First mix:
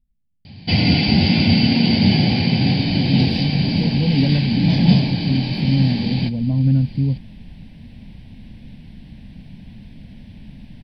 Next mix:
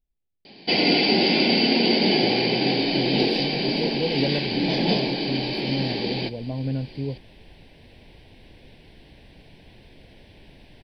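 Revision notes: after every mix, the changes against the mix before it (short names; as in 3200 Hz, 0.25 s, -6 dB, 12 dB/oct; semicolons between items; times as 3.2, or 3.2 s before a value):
first sound: add resonant low shelf 140 Hz -14 dB, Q 3; master: add resonant low shelf 290 Hz -10 dB, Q 3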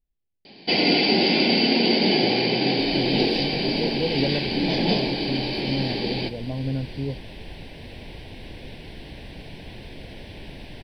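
second sound +10.0 dB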